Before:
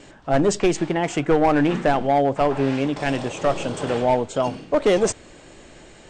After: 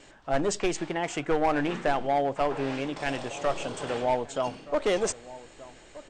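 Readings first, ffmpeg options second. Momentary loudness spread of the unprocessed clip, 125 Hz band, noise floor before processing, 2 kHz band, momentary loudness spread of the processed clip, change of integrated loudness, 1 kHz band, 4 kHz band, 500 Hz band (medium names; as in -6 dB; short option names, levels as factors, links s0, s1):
6 LU, -11.0 dB, -47 dBFS, -5.0 dB, 10 LU, -7.5 dB, -6.0 dB, -4.5 dB, -7.5 dB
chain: -filter_complex "[0:a]equalizer=f=150:w=0.37:g=-7,asplit=2[s0][s1];[s1]adelay=1224,volume=0.141,highshelf=f=4000:g=-27.6[s2];[s0][s2]amix=inputs=2:normalize=0,volume=0.596"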